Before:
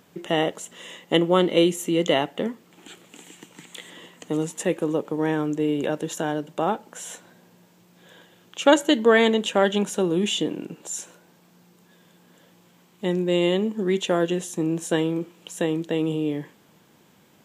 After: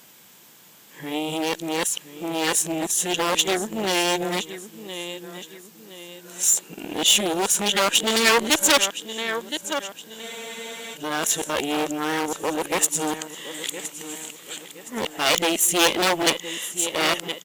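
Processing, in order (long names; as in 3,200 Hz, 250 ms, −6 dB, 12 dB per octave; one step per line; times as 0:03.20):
played backwards from end to start
low-shelf EQ 100 Hz +8.5 dB
on a send: repeating echo 1,017 ms, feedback 41%, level −14 dB
on the sum: harmonic generator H 5 −21 dB, 6 −10 dB, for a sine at −2 dBFS
asymmetric clip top −13.5 dBFS
spectral tilt +3.5 dB per octave
frozen spectrum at 0:10.23, 0.71 s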